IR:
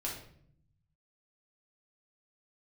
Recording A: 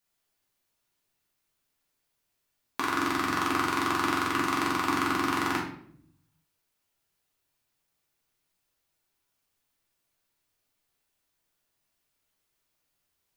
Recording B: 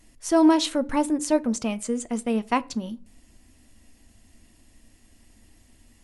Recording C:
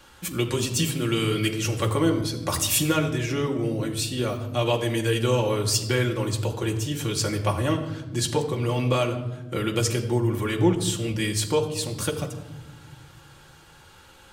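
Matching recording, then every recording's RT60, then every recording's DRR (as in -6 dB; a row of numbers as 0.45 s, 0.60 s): A; 0.60 s, 0.45 s, 1.1 s; -4.0 dB, 14.0 dB, 0.5 dB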